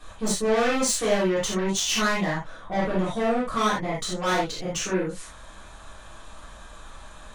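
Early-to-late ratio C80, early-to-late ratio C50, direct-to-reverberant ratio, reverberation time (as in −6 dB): 9.5 dB, 2.0 dB, −9.5 dB, non-exponential decay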